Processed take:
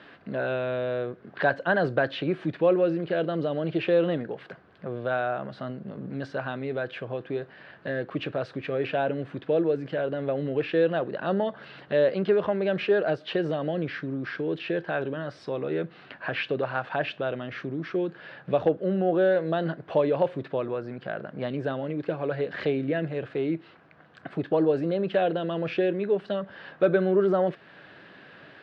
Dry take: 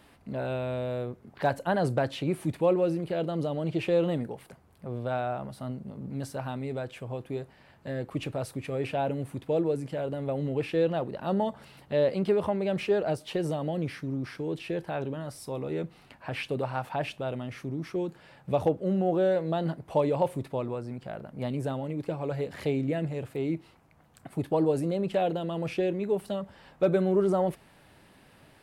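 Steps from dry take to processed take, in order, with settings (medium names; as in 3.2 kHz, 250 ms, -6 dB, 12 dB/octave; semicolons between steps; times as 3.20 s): in parallel at +1.5 dB: compression, threshold -39 dBFS, peak gain reduction 18.5 dB; on the sum: cabinet simulation 190–3900 Hz, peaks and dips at 240 Hz -5 dB, 880 Hz -7 dB, 1.6 kHz +8 dB, 2.2 kHz -3 dB; trim +2 dB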